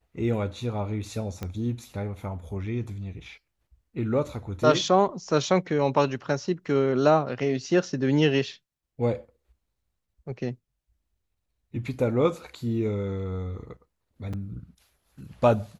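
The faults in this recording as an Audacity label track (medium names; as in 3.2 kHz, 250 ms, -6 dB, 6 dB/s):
1.430000	1.430000	pop -19 dBFS
14.330000	14.340000	dropout 5 ms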